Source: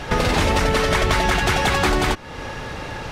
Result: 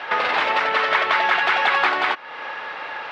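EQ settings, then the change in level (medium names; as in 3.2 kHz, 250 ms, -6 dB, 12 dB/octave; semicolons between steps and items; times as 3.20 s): high-pass 980 Hz 12 dB/octave; low-pass 9.1 kHz 12 dB/octave; distance through air 380 m; +7.5 dB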